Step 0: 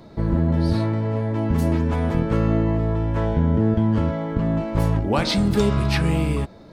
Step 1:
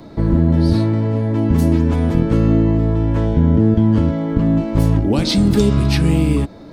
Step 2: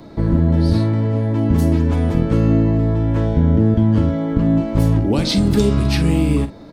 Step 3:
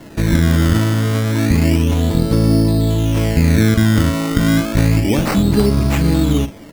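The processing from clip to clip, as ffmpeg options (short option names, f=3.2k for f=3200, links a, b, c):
-filter_complex "[0:a]equalizer=f=290:w=6:g=7.5,acrossover=split=460|3000[a][b][c];[b]acompressor=threshold=-36dB:ratio=4[d];[a][d][c]amix=inputs=3:normalize=0,volume=5.5dB"
-filter_complex "[0:a]asplit=2[a][b];[b]adelay=47,volume=-12dB[c];[a][c]amix=inputs=2:normalize=0,volume=-1dB"
-af "acrusher=samples=18:mix=1:aa=0.000001:lfo=1:lforange=18:lforate=0.3,volume=1.5dB"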